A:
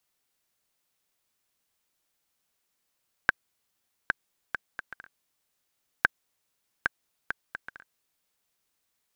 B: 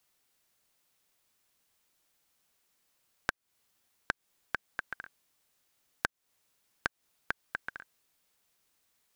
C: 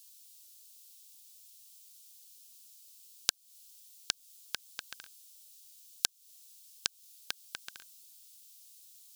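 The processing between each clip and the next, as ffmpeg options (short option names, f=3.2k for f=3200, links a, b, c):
-af "acompressor=threshold=-32dB:ratio=10,volume=3.5dB"
-af "aexciter=amount=14.7:drive=6.5:freq=2.8k,volume=-9.5dB"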